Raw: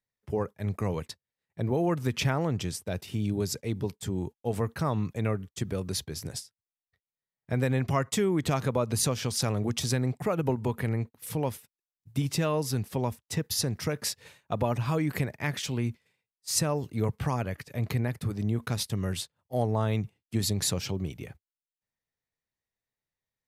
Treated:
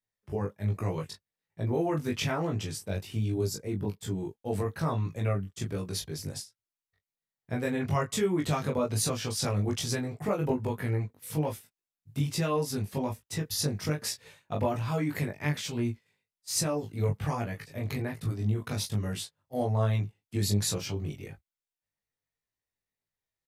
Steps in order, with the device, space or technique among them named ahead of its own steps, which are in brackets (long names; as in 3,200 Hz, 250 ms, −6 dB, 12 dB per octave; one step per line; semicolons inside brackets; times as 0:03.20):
0:03.39–0:04.01: parametric band 1,700 Hz → 8,500 Hz −9 dB 1.1 octaves
double-tracked vocal (double-tracking delay 20 ms −4 dB; chorus effect 1.2 Hz, delay 17 ms, depth 3.5 ms)